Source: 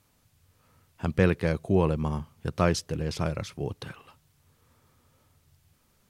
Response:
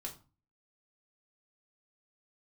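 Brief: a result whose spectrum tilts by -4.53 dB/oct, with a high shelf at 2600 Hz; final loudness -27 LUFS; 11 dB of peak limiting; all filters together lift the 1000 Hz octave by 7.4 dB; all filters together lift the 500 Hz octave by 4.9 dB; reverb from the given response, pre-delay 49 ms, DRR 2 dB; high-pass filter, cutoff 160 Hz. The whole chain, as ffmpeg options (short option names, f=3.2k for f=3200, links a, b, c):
-filter_complex "[0:a]highpass=160,equalizer=f=500:t=o:g=4,equalizer=f=1k:t=o:g=7,highshelf=f=2.6k:g=8,alimiter=limit=-15dB:level=0:latency=1,asplit=2[a][b];[1:a]atrim=start_sample=2205,adelay=49[c];[b][c]afir=irnorm=-1:irlink=0,volume=0.5dB[d];[a][d]amix=inputs=2:normalize=0,volume=0.5dB"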